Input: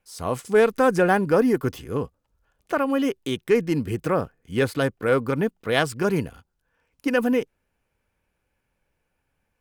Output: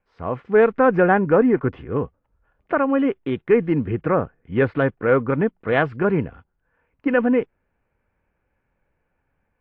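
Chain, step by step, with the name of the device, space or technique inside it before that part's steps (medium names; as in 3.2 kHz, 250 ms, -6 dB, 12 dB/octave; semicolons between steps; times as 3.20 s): action camera in a waterproof case (low-pass 2.2 kHz 24 dB/octave; level rider gain up to 3.5 dB; AAC 48 kbps 22.05 kHz)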